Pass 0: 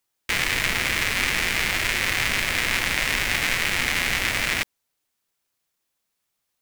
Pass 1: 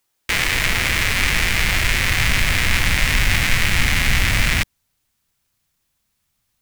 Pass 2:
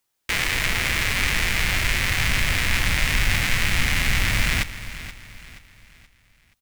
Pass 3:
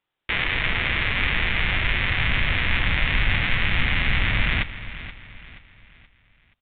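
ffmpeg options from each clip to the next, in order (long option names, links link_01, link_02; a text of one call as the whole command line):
ffmpeg -i in.wav -filter_complex "[0:a]asubboost=boost=5.5:cutoff=170,asplit=2[link_01][link_02];[link_02]alimiter=limit=-14dB:level=0:latency=1:release=24,volume=0.5dB[link_03];[link_01][link_03]amix=inputs=2:normalize=0" out.wav
ffmpeg -i in.wav -af "aecho=1:1:477|954|1431|1908:0.2|0.0798|0.0319|0.0128,volume=-4dB" out.wav
ffmpeg -i in.wav -af "aresample=8000,aresample=44100" out.wav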